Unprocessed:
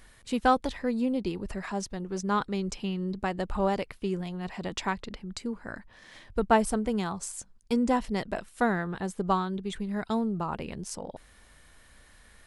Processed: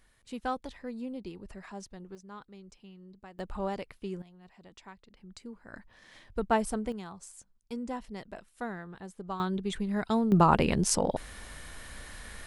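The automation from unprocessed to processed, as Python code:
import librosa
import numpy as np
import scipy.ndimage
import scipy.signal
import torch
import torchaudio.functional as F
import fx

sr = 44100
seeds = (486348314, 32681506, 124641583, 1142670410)

y = fx.gain(x, sr, db=fx.steps((0.0, -10.5), (2.15, -19.5), (3.39, -7.0), (4.22, -19.5), (5.17, -11.0), (5.73, -4.5), (6.92, -11.5), (9.4, 1.0), (10.32, 11.0)))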